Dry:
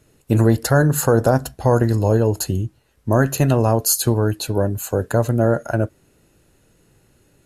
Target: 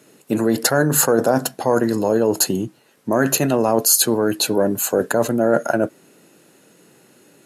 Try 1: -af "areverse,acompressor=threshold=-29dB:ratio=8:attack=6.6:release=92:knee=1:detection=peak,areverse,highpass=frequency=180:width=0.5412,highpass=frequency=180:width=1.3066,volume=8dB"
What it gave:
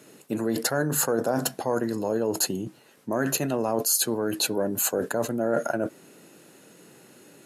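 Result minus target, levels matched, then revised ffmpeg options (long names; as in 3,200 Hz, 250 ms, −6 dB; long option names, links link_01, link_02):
downward compressor: peak gain reduction +9 dB
-af "areverse,acompressor=threshold=-19dB:ratio=8:attack=6.6:release=92:knee=1:detection=peak,areverse,highpass=frequency=180:width=0.5412,highpass=frequency=180:width=1.3066,volume=8dB"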